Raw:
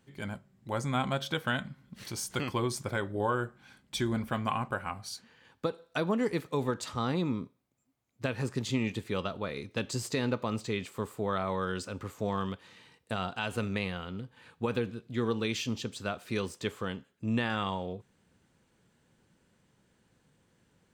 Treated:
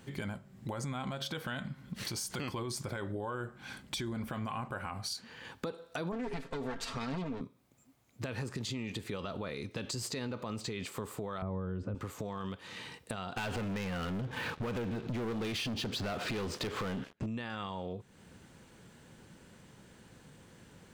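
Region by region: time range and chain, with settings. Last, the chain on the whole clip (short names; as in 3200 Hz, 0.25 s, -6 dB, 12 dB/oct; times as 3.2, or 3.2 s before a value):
6.12–7.41 minimum comb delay 7.4 ms + air absorption 56 m + comb 4.4 ms, depth 49%
11.42–11.95 LPF 1800 Hz 6 dB/oct + tilt -4.5 dB/oct
13.37–17.26 compressor 5:1, threshold -46 dBFS + air absorption 150 m + sample leveller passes 5
whole clip: dynamic EQ 4600 Hz, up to +4 dB, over -55 dBFS, Q 4.8; limiter -29.5 dBFS; compressor 3:1, threshold -51 dBFS; gain +12 dB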